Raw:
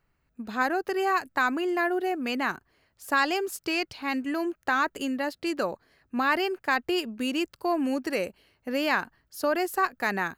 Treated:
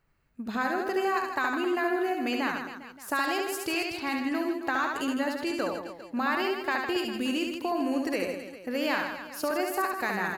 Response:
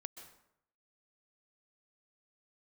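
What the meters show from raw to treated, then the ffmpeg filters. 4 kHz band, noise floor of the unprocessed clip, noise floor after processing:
−1.0 dB, −73 dBFS, −47 dBFS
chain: -af "acompressor=threshold=-29dB:ratio=2,aecho=1:1:70|157.5|266.9|403.6|574.5:0.631|0.398|0.251|0.158|0.1"

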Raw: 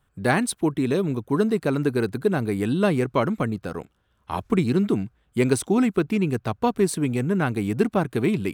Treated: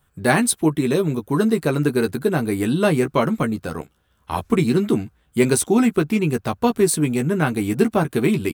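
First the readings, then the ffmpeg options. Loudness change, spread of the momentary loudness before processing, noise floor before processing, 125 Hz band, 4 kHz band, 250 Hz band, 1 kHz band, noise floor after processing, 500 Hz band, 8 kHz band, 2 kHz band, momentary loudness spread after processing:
+3.5 dB, 6 LU, −67 dBFS, +2.5 dB, +5.5 dB, +3.5 dB, +3.0 dB, −63 dBFS, +3.5 dB, +9.0 dB, +4.0 dB, 6 LU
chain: -filter_complex "[0:a]highshelf=frequency=7100:gain=9,asplit=2[link_01][link_02];[link_02]adelay=13,volume=-6dB[link_03];[link_01][link_03]amix=inputs=2:normalize=0,volume=2.5dB"

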